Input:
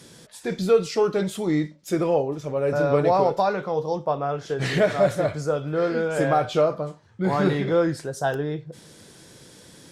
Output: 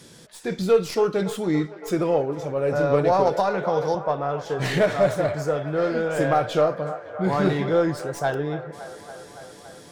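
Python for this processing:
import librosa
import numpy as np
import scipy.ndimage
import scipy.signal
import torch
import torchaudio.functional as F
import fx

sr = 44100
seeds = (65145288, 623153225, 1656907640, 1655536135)

y = fx.tracing_dist(x, sr, depth_ms=0.044)
y = fx.echo_wet_bandpass(y, sr, ms=282, feedback_pct=77, hz=1000.0, wet_db=-12.5)
y = fx.band_squash(y, sr, depth_pct=100, at=(3.27, 3.95))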